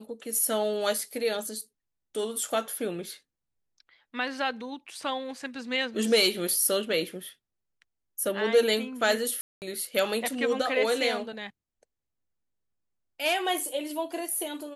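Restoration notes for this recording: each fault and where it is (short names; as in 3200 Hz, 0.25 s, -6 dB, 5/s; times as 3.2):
9.41–9.62 gap 0.209 s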